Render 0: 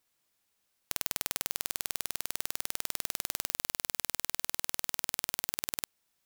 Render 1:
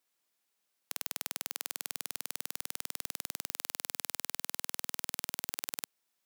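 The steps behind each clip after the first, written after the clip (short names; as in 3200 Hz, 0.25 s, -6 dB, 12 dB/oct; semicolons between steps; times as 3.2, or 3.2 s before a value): HPF 210 Hz 12 dB/oct; gain -3.5 dB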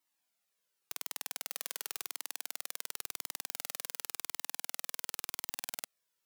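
cascading flanger falling 0.92 Hz; gain +2.5 dB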